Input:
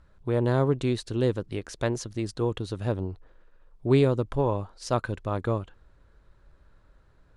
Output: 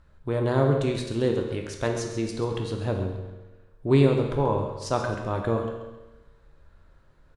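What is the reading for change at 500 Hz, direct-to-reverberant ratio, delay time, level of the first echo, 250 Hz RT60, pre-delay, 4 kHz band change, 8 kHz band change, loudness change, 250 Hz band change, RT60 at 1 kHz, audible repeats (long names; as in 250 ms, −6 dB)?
+2.0 dB, 1.5 dB, 135 ms, −11.5 dB, 1.1 s, 13 ms, +2.0 dB, +2.0 dB, +1.5 dB, +1.5 dB, 1.1 s, 2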